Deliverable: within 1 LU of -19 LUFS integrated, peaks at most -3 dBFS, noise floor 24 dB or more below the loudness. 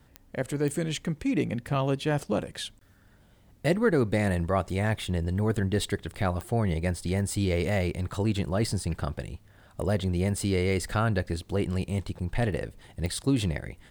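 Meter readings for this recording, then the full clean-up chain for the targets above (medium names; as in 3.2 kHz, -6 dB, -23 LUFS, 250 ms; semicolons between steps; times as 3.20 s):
clicks found 5; loudness -28.5 LUFS; peak level -11.5 dBFS; loudness target -19.0 LUFS
-> de-click; trim +9.5 dB; peak limiter -3 dBFS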